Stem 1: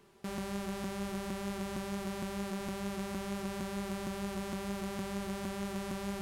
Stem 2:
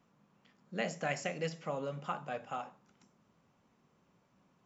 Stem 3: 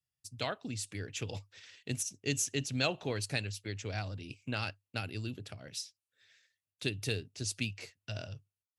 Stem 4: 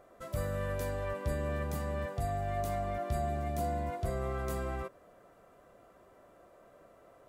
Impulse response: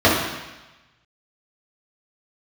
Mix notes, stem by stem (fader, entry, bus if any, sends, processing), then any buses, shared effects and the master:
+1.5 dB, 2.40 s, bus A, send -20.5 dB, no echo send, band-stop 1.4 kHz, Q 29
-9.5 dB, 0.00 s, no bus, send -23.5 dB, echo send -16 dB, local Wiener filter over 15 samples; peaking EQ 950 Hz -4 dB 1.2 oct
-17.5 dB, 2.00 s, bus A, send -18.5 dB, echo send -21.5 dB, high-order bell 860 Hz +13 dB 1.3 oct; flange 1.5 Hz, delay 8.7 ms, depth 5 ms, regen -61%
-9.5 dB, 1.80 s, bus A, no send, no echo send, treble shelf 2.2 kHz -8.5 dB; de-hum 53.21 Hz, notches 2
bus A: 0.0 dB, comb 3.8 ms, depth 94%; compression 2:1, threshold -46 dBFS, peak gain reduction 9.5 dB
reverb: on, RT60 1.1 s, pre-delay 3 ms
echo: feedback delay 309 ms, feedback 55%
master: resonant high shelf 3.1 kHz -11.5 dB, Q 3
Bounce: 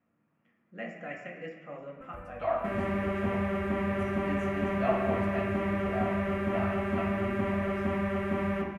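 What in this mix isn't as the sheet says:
stem 2: missing local Wiener filter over 15 samples; stem 3 -17.5 dB -> -10.0 dB

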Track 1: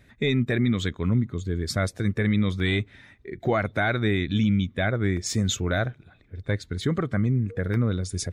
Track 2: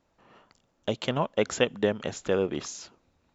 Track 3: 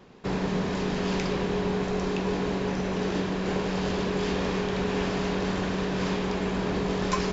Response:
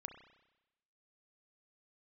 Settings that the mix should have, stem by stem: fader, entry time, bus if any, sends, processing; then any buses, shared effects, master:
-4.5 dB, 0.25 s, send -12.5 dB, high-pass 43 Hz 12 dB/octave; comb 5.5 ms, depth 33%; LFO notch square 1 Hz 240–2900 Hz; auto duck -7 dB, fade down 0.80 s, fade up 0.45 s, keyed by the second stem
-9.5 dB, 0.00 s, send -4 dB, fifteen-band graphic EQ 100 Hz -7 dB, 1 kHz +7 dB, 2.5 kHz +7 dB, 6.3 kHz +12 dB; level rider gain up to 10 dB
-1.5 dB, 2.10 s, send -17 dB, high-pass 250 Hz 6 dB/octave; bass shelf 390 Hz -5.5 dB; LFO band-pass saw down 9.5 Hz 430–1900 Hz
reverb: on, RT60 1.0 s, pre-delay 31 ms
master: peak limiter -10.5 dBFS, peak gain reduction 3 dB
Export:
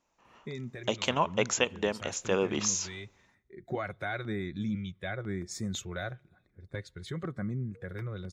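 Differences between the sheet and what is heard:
stem 1 -4.5 dB -> -11.0 dB; stem 3: muted; reverb return -9.5 dB

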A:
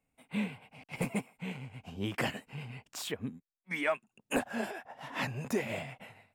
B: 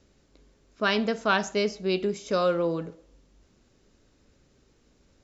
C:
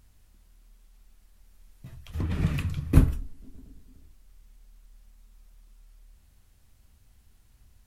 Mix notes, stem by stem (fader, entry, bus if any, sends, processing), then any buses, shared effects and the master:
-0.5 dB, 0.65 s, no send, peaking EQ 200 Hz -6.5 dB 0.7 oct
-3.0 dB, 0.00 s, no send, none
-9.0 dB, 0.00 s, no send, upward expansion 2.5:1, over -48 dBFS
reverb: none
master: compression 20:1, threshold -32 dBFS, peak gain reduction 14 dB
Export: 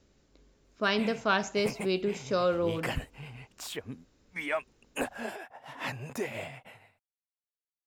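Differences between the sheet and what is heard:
stem C -9.0 dB -> -16.5 dB; master: missing compression 20:1, threshold -32 dBFS, peak gain reduction 14 dB

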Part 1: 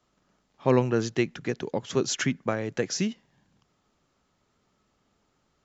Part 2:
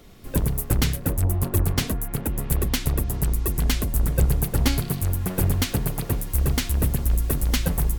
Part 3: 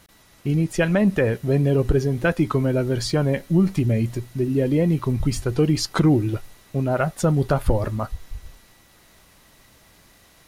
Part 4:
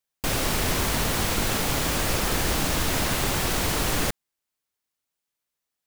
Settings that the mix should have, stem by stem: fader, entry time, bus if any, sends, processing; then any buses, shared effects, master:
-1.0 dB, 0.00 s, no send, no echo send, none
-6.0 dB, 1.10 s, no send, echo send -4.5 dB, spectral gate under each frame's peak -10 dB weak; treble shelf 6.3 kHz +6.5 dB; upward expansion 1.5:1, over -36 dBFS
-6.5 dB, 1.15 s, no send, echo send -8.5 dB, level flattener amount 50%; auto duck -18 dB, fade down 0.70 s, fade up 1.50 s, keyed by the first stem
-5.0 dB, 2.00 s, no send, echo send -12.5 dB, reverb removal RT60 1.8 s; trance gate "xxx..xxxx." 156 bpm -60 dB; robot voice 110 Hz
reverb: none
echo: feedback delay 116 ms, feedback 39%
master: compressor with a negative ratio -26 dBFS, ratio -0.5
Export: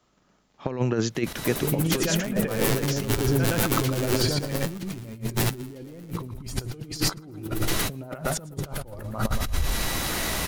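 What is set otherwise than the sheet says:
stem 2: missing treble shelf 6.3 kHz +6.5 dB; stem 3 -6.5 dB -> -0.5 dB; stem 4: missing reverb removal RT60 1.8 s

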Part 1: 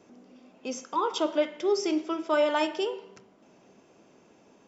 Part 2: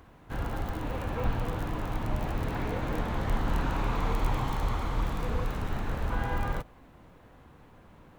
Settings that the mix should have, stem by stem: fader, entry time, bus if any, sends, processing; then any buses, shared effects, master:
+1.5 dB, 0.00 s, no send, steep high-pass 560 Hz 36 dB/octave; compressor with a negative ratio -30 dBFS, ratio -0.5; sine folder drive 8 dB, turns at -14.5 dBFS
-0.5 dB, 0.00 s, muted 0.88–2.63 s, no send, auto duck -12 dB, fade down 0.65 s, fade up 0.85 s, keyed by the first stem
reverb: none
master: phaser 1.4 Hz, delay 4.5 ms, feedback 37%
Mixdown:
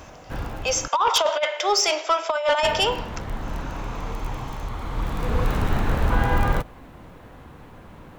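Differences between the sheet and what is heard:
stem 2 -0.5 dB -> +10.0 dB; master: missing phaser 1.4 Hz, delay 4.5 ms, feedback 37%

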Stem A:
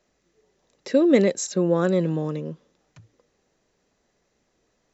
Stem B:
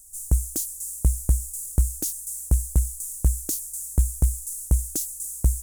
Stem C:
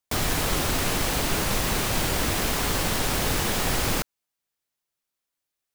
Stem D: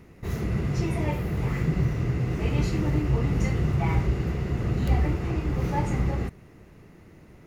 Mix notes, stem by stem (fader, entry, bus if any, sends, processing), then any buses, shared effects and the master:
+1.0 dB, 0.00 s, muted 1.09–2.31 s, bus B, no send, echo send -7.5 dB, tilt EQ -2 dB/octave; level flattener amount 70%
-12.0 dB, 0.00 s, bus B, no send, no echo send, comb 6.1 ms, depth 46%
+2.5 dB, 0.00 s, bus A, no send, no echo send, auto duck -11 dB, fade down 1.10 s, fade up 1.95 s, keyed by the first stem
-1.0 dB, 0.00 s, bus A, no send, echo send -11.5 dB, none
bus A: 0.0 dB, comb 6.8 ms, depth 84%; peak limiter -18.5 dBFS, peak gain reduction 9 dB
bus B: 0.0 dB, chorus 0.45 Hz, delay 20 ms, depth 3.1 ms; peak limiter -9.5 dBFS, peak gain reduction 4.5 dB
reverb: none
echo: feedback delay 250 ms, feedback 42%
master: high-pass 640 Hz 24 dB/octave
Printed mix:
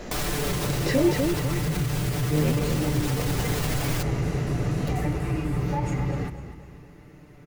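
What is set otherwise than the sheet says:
stem A +1.0 dB -> -6.0 dB; stem B -12.0 dB -> -20.0 dB; master: missing high-pass 640 Hz 24 dB/octave

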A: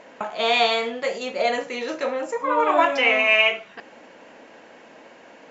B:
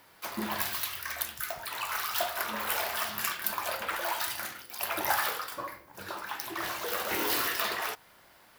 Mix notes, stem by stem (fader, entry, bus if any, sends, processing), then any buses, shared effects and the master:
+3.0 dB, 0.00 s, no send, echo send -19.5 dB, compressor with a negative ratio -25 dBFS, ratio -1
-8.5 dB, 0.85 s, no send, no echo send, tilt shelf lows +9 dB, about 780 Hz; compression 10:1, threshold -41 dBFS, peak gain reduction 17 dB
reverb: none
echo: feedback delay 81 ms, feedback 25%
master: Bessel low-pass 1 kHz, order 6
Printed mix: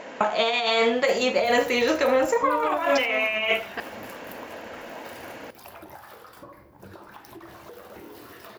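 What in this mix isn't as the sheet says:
stem B -8.5 dB -> 0.0 dB; master: missing Bessel low-pass 1 kHz, order 6

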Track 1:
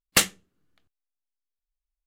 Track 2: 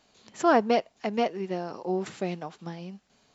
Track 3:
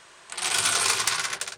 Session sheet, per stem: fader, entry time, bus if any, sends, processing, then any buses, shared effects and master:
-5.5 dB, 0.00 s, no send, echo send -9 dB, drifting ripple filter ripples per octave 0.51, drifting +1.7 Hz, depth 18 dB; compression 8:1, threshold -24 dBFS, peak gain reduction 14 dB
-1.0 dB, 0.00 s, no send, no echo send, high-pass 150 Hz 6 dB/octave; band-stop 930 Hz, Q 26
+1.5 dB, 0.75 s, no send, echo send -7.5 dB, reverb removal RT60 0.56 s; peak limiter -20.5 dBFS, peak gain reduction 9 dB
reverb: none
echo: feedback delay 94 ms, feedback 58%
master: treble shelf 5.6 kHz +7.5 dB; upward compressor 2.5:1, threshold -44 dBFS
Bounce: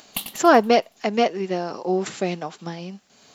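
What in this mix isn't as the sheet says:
stem 2 -1.0 dB -> +7.0 dB; stem 3: muted

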